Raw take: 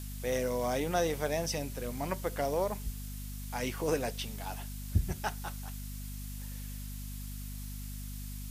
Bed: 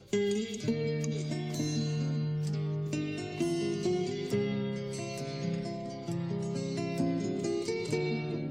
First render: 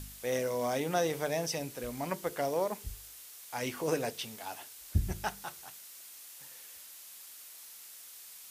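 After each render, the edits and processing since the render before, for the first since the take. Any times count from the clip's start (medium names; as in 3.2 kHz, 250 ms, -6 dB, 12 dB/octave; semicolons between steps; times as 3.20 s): de-hum 50 Hz, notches 9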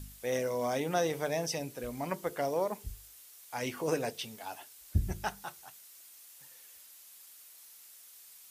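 noise reduction 6 dB, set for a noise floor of -51 dBFS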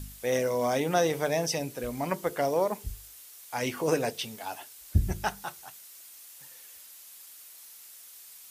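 trim +5 dB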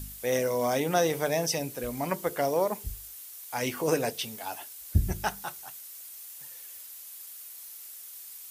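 treble shelf 11 kHz +9 dB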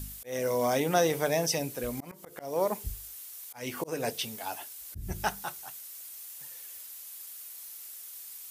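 slow attack 265 ms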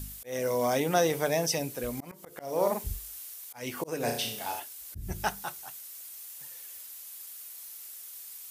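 2.42–3.34 s: doubling 45 ms -3.5 dB; 3.97–4.60 s: flutter echo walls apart 5.8 m, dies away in 0.53 s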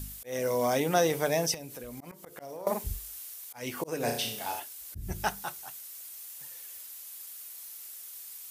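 1.54–2.67 s: compression 5:1, threshold -39 dBFS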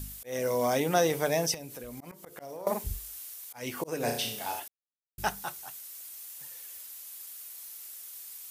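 4.68–5.18 s: mute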